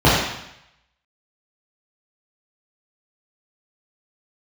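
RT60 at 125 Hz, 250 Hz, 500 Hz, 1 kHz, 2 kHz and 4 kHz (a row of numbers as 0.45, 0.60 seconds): 0.80, 0.80, 0.75, 0.80, 0.90, 0.85 seconds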